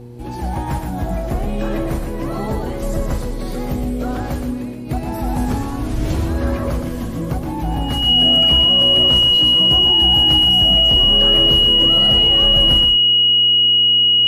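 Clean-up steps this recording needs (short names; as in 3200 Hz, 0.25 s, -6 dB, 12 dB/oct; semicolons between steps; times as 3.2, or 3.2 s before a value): de-hum 120.4 Hz, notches 4; notch 2900 Hz, Q 30; inverse comb 0.121 s -6 dB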